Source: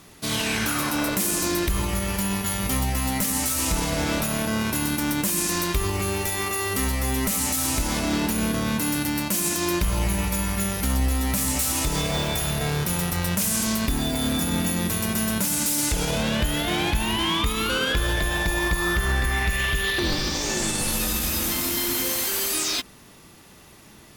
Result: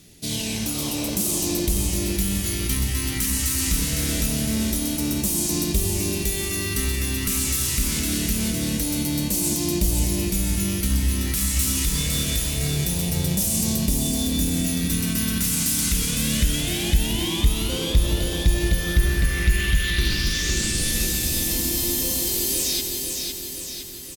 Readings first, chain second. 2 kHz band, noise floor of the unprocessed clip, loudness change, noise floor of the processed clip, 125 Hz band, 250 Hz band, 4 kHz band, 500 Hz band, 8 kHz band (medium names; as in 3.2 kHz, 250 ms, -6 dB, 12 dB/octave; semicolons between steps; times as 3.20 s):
-3.5 dB, -49 dBFS, +1.0 dB, -28 dBFS, +3.0 dB, +0.5 dB, +1.0 dB, -2.5 dB, +2.5 dB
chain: delay 178 ms -12 dB; phase shifter stages 2, 0.24 Hz, lowest notch 660–1500 Hz; feedback delay 509 ms, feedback 57%, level -4.5 dB